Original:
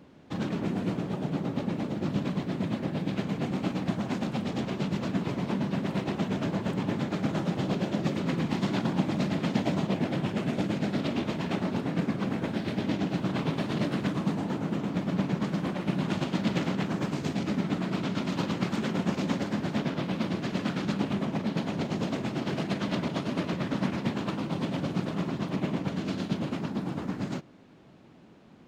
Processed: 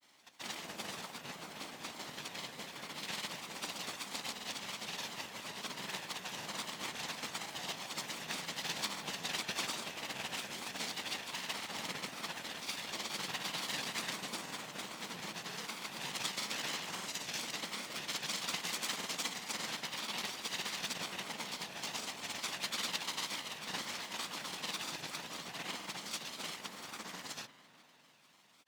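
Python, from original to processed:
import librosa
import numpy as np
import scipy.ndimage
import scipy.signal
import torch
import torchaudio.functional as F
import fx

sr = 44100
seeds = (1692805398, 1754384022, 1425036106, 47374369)

y = fx.lower_of_two(x, sr, delay_ms=1.0)
y = fx.rev_spring(y, sr, rt60_s=3.8, pass_ms=(37,), chirp_ms=55, drr_db=11.5)
y = fx.granulator(y, sr, seeds[0], grain_ms=100.0, per_s=20.0, spray_ms=100.0, spread_st=3)
y = np.diff(y, prepend=0.0)
y = y * librosa.db_to_amplitude(10.0)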